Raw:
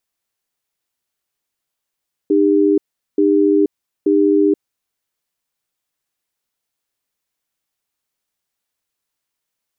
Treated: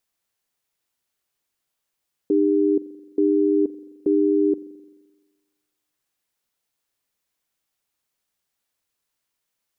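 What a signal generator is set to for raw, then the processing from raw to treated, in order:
tone pair in a cadence 305 Hz, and 400 Hz, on 0.48 s, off 0.40 s, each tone −13 dBFS 2.62 s
brickwall limiter −12 dBFS
spring reverb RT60 1.3 s, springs 43 ms, DRR 15 dB

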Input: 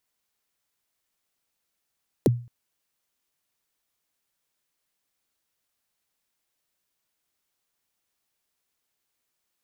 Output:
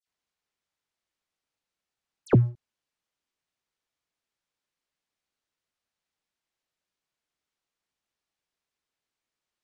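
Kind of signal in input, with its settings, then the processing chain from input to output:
synth kick length 0.22 s, from 540 Hz, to 120 Hz, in 23 ms, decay 0.37 s, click on, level −12 dB
leveller curve on the samples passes 2
high-frequency loss of the air 70 metres
all-pass dispersion lows, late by 74 ms, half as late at 2,800 Hz

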